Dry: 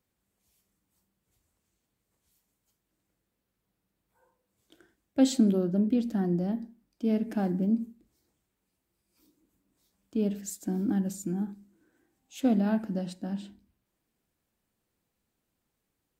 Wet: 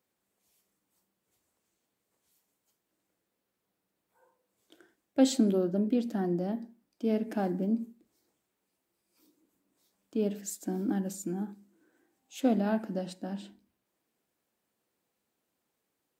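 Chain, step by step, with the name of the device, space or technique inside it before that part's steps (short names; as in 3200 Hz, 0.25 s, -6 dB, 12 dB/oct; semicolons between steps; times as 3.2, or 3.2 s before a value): filter by subtraction (in parallel: LPF 460 Hz 12 dB/oct + phase invert)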